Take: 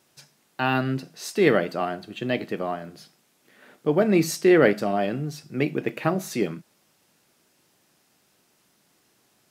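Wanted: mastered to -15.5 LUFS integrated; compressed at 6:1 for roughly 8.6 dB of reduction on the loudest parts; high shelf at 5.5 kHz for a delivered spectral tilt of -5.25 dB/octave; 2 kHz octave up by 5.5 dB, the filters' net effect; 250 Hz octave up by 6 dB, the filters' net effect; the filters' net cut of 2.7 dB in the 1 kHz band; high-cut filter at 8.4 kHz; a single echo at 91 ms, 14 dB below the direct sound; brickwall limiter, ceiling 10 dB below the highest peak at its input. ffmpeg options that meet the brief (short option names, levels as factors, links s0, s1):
-af "lowpass=8400,equalizer=f=250:t=o:g=9,equalizer=f=1000:t=o:g=-8,equalizer=f=2000:t=o:g=8.5,highshelf=f=5500:g=3.5,acompressor=threshold=0.126:ratio=6,alimiter=limit=0.119:level=0:latency=1,aecho=1:1:91:0.2,volume=4.73"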